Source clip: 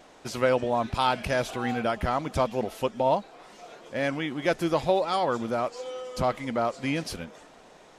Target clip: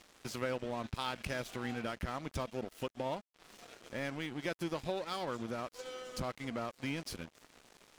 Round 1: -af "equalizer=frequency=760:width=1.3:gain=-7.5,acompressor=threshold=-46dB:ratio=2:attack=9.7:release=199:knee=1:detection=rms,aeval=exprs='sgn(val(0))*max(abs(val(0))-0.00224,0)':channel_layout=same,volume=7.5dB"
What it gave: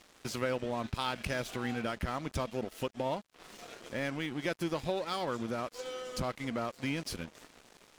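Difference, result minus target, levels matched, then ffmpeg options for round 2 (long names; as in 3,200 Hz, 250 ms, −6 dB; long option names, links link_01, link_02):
downward compressor: peak gain reduction −3 dB
-af "equalizer=frequency=760:width=1.3:gain=-7.5,acompressor=threshold=-52dB:ratio=2:attack=9.7:release=199:knee=1:detection=rms,aeval=exprs='sgn(val(0))*max(abs(val(0))-0.00224,0)':channel_layout=same,volume=7.5dB"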